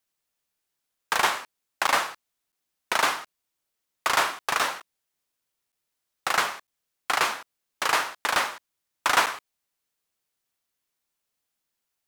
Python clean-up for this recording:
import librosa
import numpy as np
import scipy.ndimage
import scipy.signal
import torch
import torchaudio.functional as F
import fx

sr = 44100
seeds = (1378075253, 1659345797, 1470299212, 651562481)

y = fx.fix_interpolate(x, sr, at_s=(1.87, 2.52, 3.26, 4.8, 5.72, 6.67, 9.26), length_ms=7.5)